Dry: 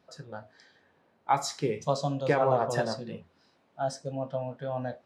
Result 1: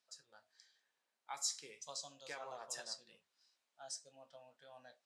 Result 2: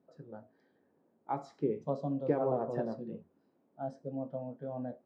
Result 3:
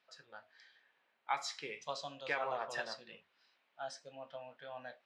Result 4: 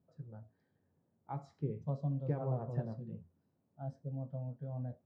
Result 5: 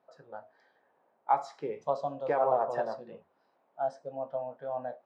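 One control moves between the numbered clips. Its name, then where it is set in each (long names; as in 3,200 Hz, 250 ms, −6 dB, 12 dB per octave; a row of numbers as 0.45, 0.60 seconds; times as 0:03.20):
resonant band-pass, frequency: 7,800, 290, 2,600, 110, 760 Hertz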